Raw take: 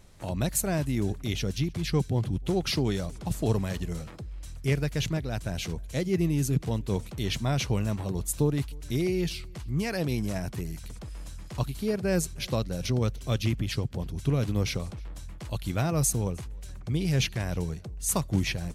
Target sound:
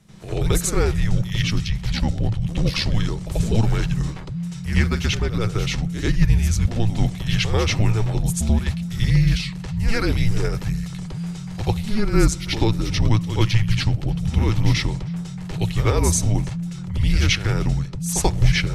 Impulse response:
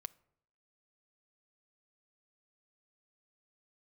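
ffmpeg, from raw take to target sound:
-filter_complex "[0:a]asettb=1/sr,asplit=3[a][b][c];[a]atrim=end=1.564[d];[b]atrim=start=1.56:end=3.2,asetpts=PTS-STARTPTS,afade=t=in:d=0.004:c=qsin,afade=t=out:st=1.636:d=0.004:c=qsin,tremolo=f=75:d=0.621[e];[c]atrim=start=3.196[f];[d][e]acrossfade=d=0.004:c1=hsin:c2=qsin[g];[g][f]acrossfade=d=0.004:c1=qsin:c2=hsin,afreqshift=-220,asplit=2[h][i];[1:a]atrim=start_sample=2205,lowpass=6.5k,adelay=87[j];[i][j]afir=irnorm=-1:irlink=0,volume=15dB[k];[h][k]amix=inputs=2:normalize=0,volume=-1.5dB"

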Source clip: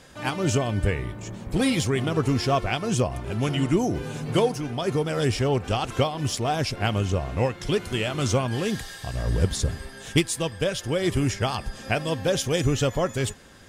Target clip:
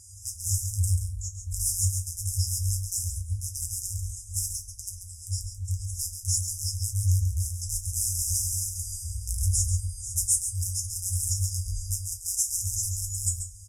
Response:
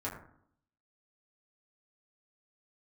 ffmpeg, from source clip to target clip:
-filter_complex "[0:a]asplit=3[a][b][c];[a]afade=t=out:st=4.9:d=0.02[d];[b]acompressor=threshold=-27dB:ratio=3,afade=t=in:st=4.9:d=0.02,afade=t=out:st=5.9:d=0.02[e];[c]afade=t=in:st=5.9:d=0.02[f];[d][e][f]amix=inputs=3:normalize=0,asplit=3[g][h][i];[g]afade=t=out:st=7.95:d=0.02[j];[h]equalizer=f=125:t=o:w=1:g=11,equalizer=f=250:t=o:w=1:g=8,equalizer=f=500:t=o:w=1:g=10,equalizer=f=2k:t=o:w=1:g=8,equalizer=f=8k:t=o:w=1:g=-9,afade=t=in:st=7.95:d=0.02,afade=t=out:st=8.63:d=0.02[k];[i]afade=t=in:st=8.63:d=0.02[l];[j][k][l]amix=inputs=3:normalize=0,aeval=exprs='(mod(7.5*val(0)+1,2)-1)/7.5':c=same,equalizer=f=230:w=0.6:g=5.5,asettb=1/sr,asplit=3[m][n][o];[m]atrim=end=12.124[p];[n]atrim=start=12.12:end=12.52,asetpts=PTS-STARTPTS,afade=t=in:d=0.004:c=qsin,afade=t=out:st=0.396:d=0.004:c=qsin,afreqshift=440[q];[o]atrim=start=12.516[r];[p][q]acrossfade=d=0.004:c1=hsin:c2=qsin[s];[s][r]acrossfade=d=0.004:c1=qsin:c2=hsin,asoftclip=type=tanh:threshold=-27dB,lowpass=f=11k:w=0.5412,lowpass=f=11k:w=1.3066,aexciter=amount=6.8:drive=4:freq=6.2k,aecho=1:1:137:0.376[t];[1:a]atrim=start_sample=2205,afade=t=out:st=0.19:d=0.01,atrim=end_sample=8820[u];[t][u]afir=irnorm=-1:irlink=0,afftfilt=real='re*(1-between(b*sr/4096,100,4900))':imag='im*(1-between(b*sr/4096,100,4900))':win_size=4096:overlap=0.75"

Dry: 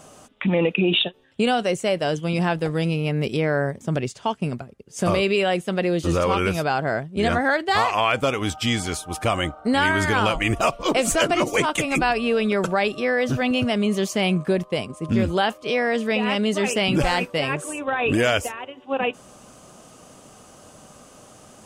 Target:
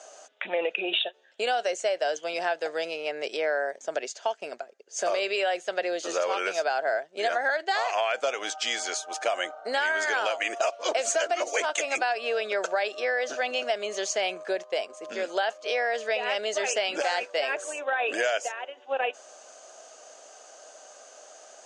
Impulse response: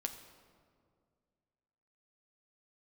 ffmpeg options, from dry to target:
-af "highpass=f=450:w=0.5412,highpass=f=450:w=1.3066,equalizer=f=660:t=q:w=4:g=8,equalizer=f=1.1k:t=q:w=4:g=-6,equalizer=f=1.6k:t=q:w=4:g=6,equalizer=f=4.5k:t=q:w=4:g=4,equalizer=f=6.5k:t=q:w=4:g=9,lowpass=f=7.7k:w=0.5412,lowpass=f=7.7k:w=1.3066,acompressor=threshold=-19dB:ratio=6,volume=-3.5dB"

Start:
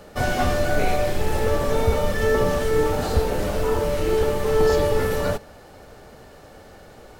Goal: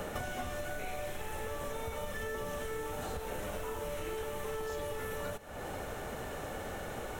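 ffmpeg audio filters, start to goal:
-filter_complex "[0:a]acompressor=threshold=-39dB:ratio=3,equalizer=f=4.7k:w=3.3:g=-13,acrossover=split=730|2800[a][b][c];[a]acompressor=threshold=-49dB:ratio=4[d];[b]acompressor=threshold=-52dB:ratio=4[e];[c]acompressor=threshold=-57dB:ratio=4[f];[d][e][f]amix=inputs=3:normalize=0,volume=8.5dB"

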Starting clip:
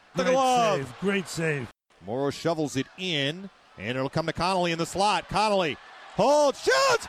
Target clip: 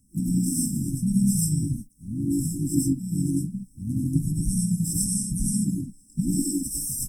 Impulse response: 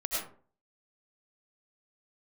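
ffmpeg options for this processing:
-filter_complex "[0:a]bass=f=250:g=5,treble=f=4k:g=10[a];[1:a]atrim=start_sample=2205,afade=t=out:st=0.22:d=0.01,atrim=end_sample=10143[b];[a][b]afir=irnorm=-1:irlink=0,afftfilt=real='re*(1-between(b*sr/4096,300,7600))':imag='im*(1-between(b*sr/4096,300,7600))':win_size=4096:overlap=0.75,asplit=3[c][d][e];[d]asetrate=29433,aresample=44100,atempo=1.49831,volume=-12dB[f];[e]asetrate=52444,aresample=44100,atempo=0.840896,volume=-11dB[g];[c][f][g]amix=inputs=3:normalize=0,volume=2.5dB"

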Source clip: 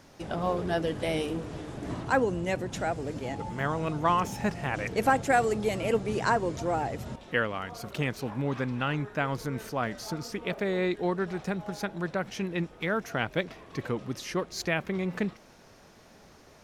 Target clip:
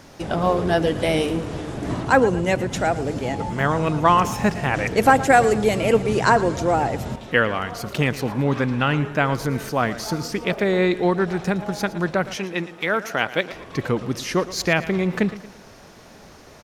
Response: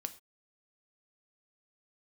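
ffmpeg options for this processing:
-filter_complex "[0:a]asettb=1/sr,asplit=3[a][b][c];[a]atrim=end=12.354[d];[b]atrim=start=12.35:end=13.53,asetpts=PTS-STARTPTS,afade=t=in:d=0.004:c=qsin,afade=t=out:st=1.176:d=0.004:c=qsin,highpass=f=440:p=1[e];[c]atrim=start=13.526[f];[d][e]acrossfade=d=0.004:c1=hsin:c2=qsin[g];[g][f]acrossfade=d=0.004:c1=qsin:c2=hsin,aecho=1:1:114|228|342|456:0.158|0.0682|0.0293|0.0126,volume=9dB"

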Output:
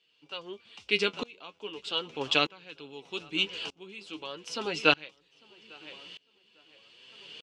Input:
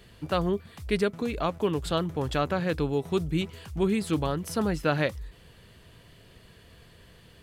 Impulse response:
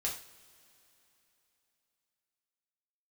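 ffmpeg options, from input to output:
-filter_complex "[0:a]highpass=360,equalizer=f=640:t=q:w=4:g=-7,equalizer=f=1.2k:t=q:w=4:g=-3,equalizer=f=1.8k:t=q:w=4:g=-10,equalizer=f=2.8k:t=q:w=4:g=8,equalizer=f=5.5k:t=q:w=4:g=3,lowpass=f=7.3k:w=0.5412,lowpass=f=7.3k:w=1.3066,asplit=2[a][b];[b]adelay=849,lowpass=f=3.7k:p=1,volume=-19dB,asplit=2[c][d];[d]adelay=849,lowpass=f=3.7k:p=1,volume=0.52,asplit=2[e][f];[f]adelay=849,lowpass=f=3.7k:p=1,volume=0.52,asplit=2[g][h];[h]adelay=849,lowpass=f=3.7k:p=1,volume=0.52[i];[a][c][e][g][i]amix=inputs=5:normalize=0,flanger=delay=6:depth=5.3:regen=42:speed=0.4:shape=triangular,equalizer=f=3k:t=o:w=1.9:g=8.5,aeval=exprs='val(0)*pow(10,-26*if(lt(mod(-0.81*n/s,1),2*abs(-0.81)/1000),1-mod(-0.81*n/s,1)/(2*abs(-0.81)/1000),(mod(-0.81*n/s,1)-2*abs(-0.81)/1000)/(1-2*abs(-0.81)/1000))/20)':c=same,volume=7.5dB"

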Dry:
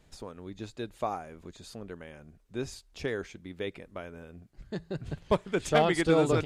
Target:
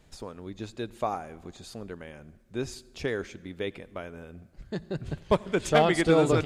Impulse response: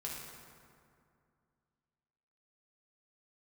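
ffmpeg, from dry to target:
-filter_complex "[0:a]asplit=2[a][b];[1:a]atrim=start_sample=2205,asetrate=66150,aresample=44100,adelay=86[c];[b][c]afir=irnorm=-1:irlink=0,volume=-18dB[d];[a][d]amix=inputs=2:normalize=0,volume=2.5dB"

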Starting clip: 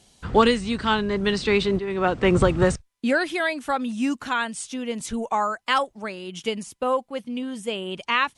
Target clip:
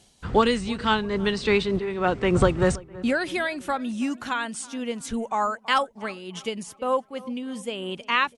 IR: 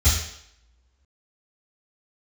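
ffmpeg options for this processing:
-filter_complex "[0:a]asplit=2[a][b];[b]adelay=327,lowpass=f=2k:p=1,volume=-20dB,asplit=2[c][d];[d]adelay=327,lowpass=f=2k:p=1,volume=0.51,asplit=2[e][f];[f]adelay=327,lowpass=f=2k:p=1,volume=0.51,asplit=2[g][h];[h]adelay=327,lowpass=f=2k:p=1,volume=0.51[i];[a][c][e][g][i]amix=inputs=5:normalize=0,tremolo=f=3.3:d=0.36"

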